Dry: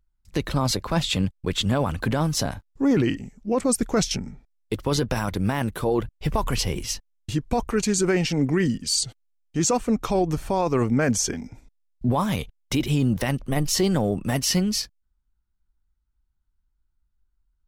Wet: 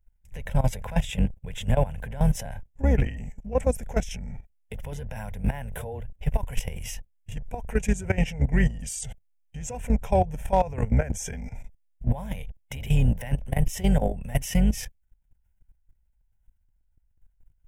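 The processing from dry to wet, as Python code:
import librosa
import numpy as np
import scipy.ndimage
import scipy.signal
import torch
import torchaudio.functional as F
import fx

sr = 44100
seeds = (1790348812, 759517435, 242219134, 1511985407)

p1 = fx.octave_divider(x, sr, octaves=2, level_db=-1.0)
p2 = fx.fixed_phaser(p1, sr, hz=1200.0, stages=6)
p3 = fx.over_compress(p2, sr, threshold_db=-33.0, ratio=-1.0)
p4 = p2 + (p3 * librosa.db_to_amplitude(1.5))
p5 = fx.hpss(p4, sr, part='harmonic', gain_db=6)
p6 = fx.level_steps(p5, sr, step_db=16)
p7 = np.clip(p6, -10.0 ** (-9.0 / 20.0), 10.0 ** (-9.0 / 20.0))
y = p7 * librosa.db_to_amplitude(-2.0)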